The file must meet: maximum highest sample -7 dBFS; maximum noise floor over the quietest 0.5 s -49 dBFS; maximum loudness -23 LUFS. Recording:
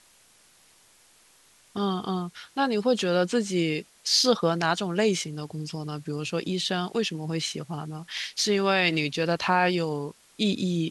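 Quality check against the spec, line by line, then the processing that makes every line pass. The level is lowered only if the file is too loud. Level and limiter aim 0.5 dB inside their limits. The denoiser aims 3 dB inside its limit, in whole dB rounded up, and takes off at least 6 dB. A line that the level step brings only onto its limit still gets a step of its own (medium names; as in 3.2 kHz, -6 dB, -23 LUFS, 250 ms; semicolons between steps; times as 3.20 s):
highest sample -9.0 dBFS: pass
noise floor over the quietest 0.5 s -59 dBFS: pass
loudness -26.5 LUFS: pass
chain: none needed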